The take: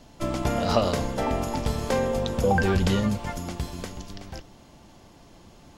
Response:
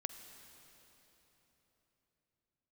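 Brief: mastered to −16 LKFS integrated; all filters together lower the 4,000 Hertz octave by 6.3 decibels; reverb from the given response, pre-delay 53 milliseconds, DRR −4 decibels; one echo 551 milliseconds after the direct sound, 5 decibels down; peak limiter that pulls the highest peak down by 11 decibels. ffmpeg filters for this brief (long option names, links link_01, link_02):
-filter_complex "[0:a]equalizer=frequency=4000:width_type=o:gain=-8.5,alimiter=limit=-19dB:level=0:latency=1,aecho=1:1:551:0.562,asplit=2[link_01][link_02];[1:a]atrim=start_sample=2205,adelay=53[link_03];[link_02][link_03]afir=irnorm=-1:irlink=0,volume=5.5dB[link_04];[link_01][link_04]amix=inputs=2:normalize=0,volume=7.5dB"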